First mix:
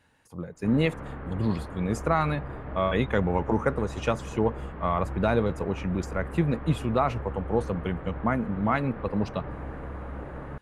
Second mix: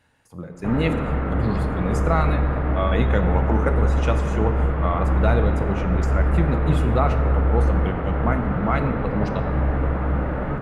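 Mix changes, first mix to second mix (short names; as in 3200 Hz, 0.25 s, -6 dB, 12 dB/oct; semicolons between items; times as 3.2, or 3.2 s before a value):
background +7.5 dB; reverb: on, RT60 1.8 s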